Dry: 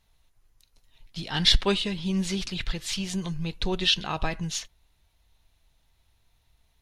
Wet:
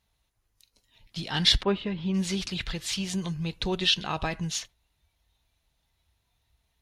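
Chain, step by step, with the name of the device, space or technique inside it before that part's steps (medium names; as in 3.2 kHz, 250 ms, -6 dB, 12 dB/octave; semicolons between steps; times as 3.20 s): high-pass 41 Hz; parallel compression (in parallel at -5 dB: compression, threshold -38 dBFS, peak gain reduction 21 dB); on the sum: spectral noise reduction 7 dB; 1.62–2.13 s: low-pass 1.4 kHz -> 2.8 kHz 12 dB/octave; trim -1.5 dB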